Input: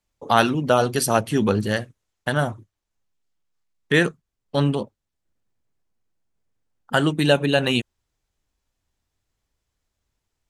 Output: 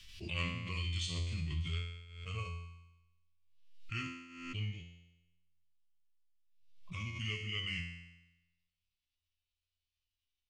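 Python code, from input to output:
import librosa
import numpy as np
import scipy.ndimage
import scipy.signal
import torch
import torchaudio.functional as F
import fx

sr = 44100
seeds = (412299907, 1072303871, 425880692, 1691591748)

y = fx.pitch_heads(x, sr, semitones=-5.0)
y = fx.curve_eq(y, sr, hz=(100.0, 820.0, 2900.0, 7700.0), db=(0, -28, 11, -3))
y = fx.hpss(y, sr, part='percussive', gain_db=-9)
y = fx.peak_eq(y, sr, hz=1100.0, db=12.0, octaves=0.25)
y = fx.comb_fb(y, sr, f0_hz=86.0, decay_s=0.99, harmonics='all', damping=0.0, mix_pct=90)
y = fx.spec_box(y, sr, start_s=1.68, length_s=0.97, low_hz=400.0, high_hz=850.0, gain_db=9)
y = fx.pre_swell(y, sr, db_per_s=59.0)
y = F.gain(torch.from_numpy(y), 1.5).numpy()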